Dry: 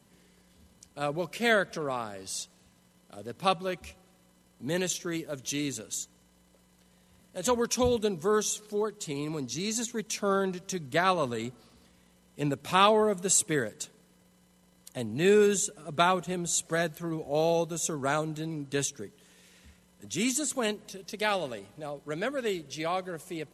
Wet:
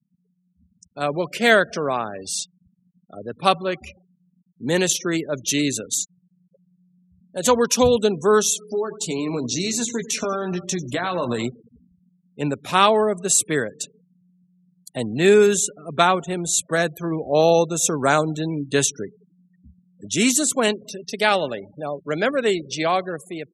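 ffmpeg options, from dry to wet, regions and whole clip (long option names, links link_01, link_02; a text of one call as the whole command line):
ffmpeg -i in.wav -filter_complex "[0:a]asettb=1/sr,asplit=3[link_01][link_02][link_03];[link_01]atrim=end=8.604[link_04];[link_02]atrim=start=8.6:end=11.47,asetpts=PTS-STARTPTS,afade=type=in:duration=0.004:curve=qsin,afade=type=out:start_time=2.866:duration=0.004:curve=qsin,acompressor=threshold=-31dB:ratio=10:attack=3.2:release=140:knee=1:detection=peak,asplit=2[link_05][link_06];[link_06]adelay=17,volume=-7.5dB[link_07];[link_05][link_07]amix=inputs=2:normalize=0,atrim=end_sample=126567,aecho=1:1:95|190|285|380|475:0.178|0.0996|0.0558|0.0312|0.0175,atrim=end_sample=126567[link_08];[link_03]atrim=start=11.466[link_09];[link_04][link_08]acrossfade=duration=0.004:curve1=hsin:curve2=qsin[link_10];[link_10][link_09]acrossfade=duration=0.004:curve1=qsin:curve2=hsin,afftfilt=real='re*gte(hypot(re,im),0.00562)':imag='im*gte(hypot(re,im),0.00562)':win_size=1024:overlap=0.75,lowshelf=frequency=96:gain=-7,dynaudnorm=framelen=350:gausssize=5:maxgain=11.5dB" out.wav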